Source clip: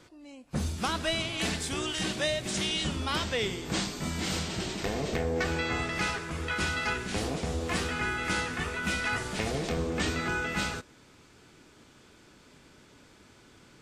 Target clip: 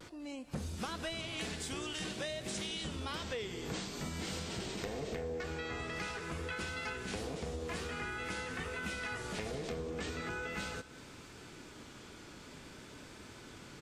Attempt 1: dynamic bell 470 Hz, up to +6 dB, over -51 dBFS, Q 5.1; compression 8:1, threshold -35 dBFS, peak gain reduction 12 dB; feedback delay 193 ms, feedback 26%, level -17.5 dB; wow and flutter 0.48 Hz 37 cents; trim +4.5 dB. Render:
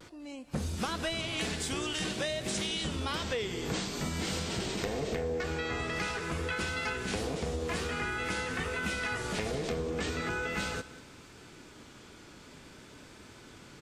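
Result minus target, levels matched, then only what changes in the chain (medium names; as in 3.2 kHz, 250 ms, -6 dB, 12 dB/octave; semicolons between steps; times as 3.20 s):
compression: peak gain reduction -6 dB
change: compression 8:1, threshold -42 dBFS, peak gain reduction 18 dB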